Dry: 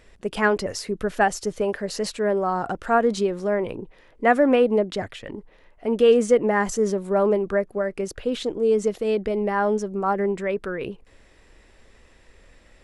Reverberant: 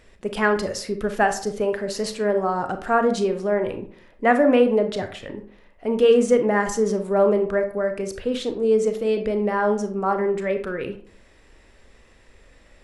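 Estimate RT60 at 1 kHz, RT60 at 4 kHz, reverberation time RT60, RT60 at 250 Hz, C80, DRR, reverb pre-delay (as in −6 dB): 0.50 s, 0.30 s, 0.50 s, 0.60 s, 15.5 dB, 7.0 dB, 29 ms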